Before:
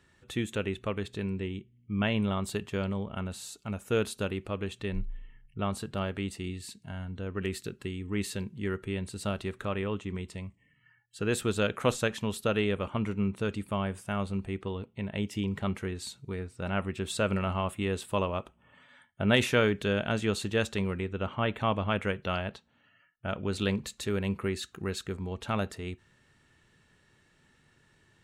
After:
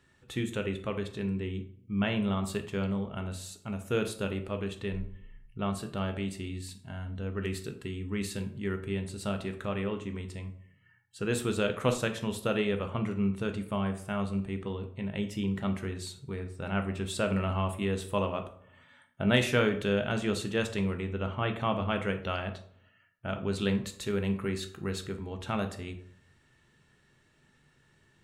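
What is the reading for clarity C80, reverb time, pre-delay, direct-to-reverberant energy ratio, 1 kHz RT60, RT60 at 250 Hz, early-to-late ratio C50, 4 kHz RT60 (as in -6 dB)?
15.5 dB, 0.65 s, 8 ms, 6.5 dB, 0.55 s, 0.70 s, 11.5 dB, 0.40 s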